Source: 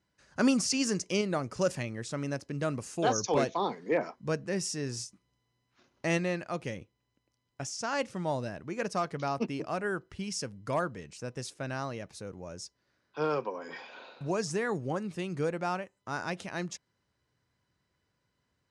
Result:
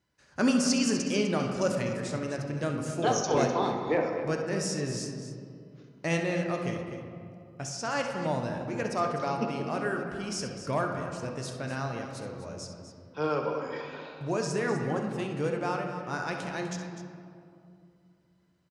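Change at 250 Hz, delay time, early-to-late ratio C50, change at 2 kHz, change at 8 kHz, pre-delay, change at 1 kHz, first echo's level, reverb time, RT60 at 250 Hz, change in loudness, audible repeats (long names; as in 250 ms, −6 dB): +3.0 dB, 66 ms, 3.5 dB, +2.0 dB, +1.0 dB, 7 ms, +2.5 dB, −11.5 dB, 2.5 s, 3.2 s, +2.0 dB, 2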